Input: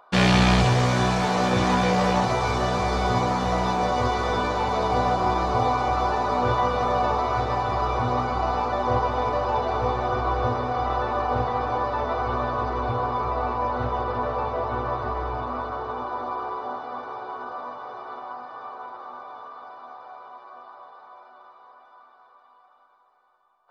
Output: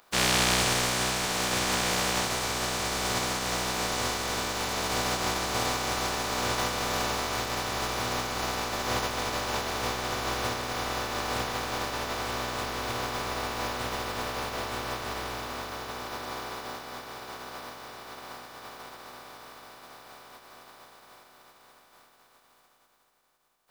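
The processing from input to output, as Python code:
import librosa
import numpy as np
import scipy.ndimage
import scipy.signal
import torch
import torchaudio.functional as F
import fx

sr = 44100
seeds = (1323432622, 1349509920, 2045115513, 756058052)

y = fx.spec_flatten(x, sr, power=0.33)
y = y * librosa.db_to_amplitude(-6.5)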